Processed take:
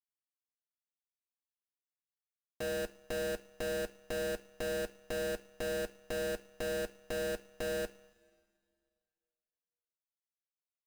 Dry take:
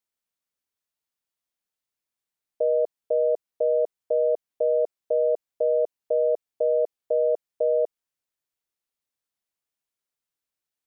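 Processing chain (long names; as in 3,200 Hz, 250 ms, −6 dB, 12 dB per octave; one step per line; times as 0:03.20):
comparator with hysteresis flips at −32.5 dBFS
coupled-rooms reverb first 0.42 s, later 3.1 s, from −16 dB, DRR 7.5 dB
power curve on the samples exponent 1.4
level −7 dB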